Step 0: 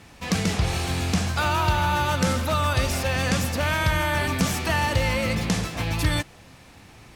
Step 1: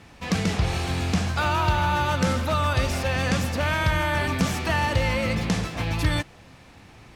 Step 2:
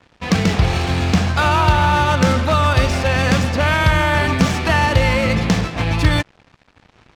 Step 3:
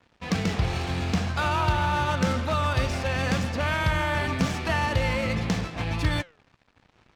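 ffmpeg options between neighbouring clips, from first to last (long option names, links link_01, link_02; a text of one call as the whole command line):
ffmpeg -i in.wav -af "highshelf=frequency=6700:gain=-8.5" out.wav
ffmpeg -i in.wav -af "aeval=exprs='sgn(val(0))*max(abs(val(0))-0.00501,0)':channel_layout=same,adynamicsmooth=sensitivity=6:basefreq=5000,volume=8.5dB" out.wav
ffmpeg -i in.wav -af "flanger=delay=4.2:depth=4.6:regen=90:speed=0.83:shape=sinusoidal,volume=-5dB" out.wav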